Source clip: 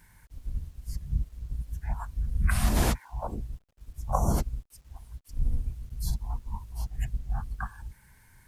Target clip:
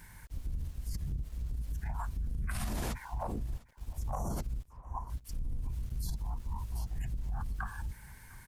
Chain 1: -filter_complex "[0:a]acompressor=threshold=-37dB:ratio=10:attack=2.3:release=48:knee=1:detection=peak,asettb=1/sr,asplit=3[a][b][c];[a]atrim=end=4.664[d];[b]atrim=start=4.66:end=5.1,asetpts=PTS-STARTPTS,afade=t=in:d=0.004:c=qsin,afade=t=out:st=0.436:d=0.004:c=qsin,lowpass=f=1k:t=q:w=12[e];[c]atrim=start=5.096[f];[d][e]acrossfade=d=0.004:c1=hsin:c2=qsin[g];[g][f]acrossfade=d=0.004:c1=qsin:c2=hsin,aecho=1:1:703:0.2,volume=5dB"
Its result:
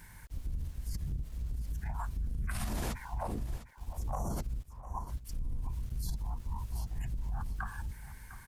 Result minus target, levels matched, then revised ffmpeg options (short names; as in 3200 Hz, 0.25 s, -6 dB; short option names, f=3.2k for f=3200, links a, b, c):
echo-to-direct +8.5 dB
-filter_complex "[0:a]acompressor=threshold=-37dB:ratio=10:attack=2.3:release=48:knee=1:detection=peak,asettb=1/sr,asplit=3[a][b][c];[a]atrim=end=4.664[d];[b]atrim=start=4.66:end=5.1,asetpts=PTS-STARTPTS,afade=t=in:d=0.004:c=qsin,afade=t=out:st=0.436:d=0.004:c=qsin,lowpass=f=1k:t=q:w=12[e];[c]atrim=start=5.096[f];[d][e]acrossfade=d=0.004:c1=hsin:c2=qsin[g];[g][f]acrossfade=d=0.004:c1=qsin:c2=hsin,aecho=1:1:703:0.075,volume=5dB"